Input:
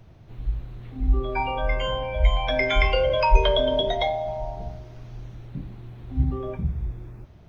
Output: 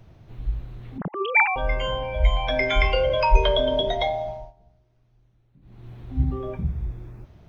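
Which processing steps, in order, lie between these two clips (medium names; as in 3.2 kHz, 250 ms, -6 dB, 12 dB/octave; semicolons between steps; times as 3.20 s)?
0.98–1.56 s: formants replaced by sine waves; 4.22–5.92 s: dip -23 dB, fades 0.31 s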